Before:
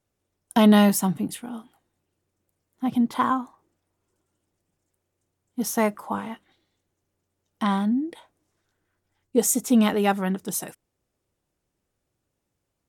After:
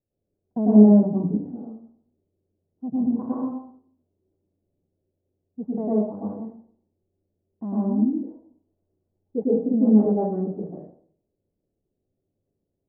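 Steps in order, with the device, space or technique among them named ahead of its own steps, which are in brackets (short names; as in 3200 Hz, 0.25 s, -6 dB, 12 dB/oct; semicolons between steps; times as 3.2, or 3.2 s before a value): next room (LPF 590 Hz 24 dB/oct; reverb RT60 0.55 s, pre-delay 0.1 s, DRR -7.5 dB); gain -6 dB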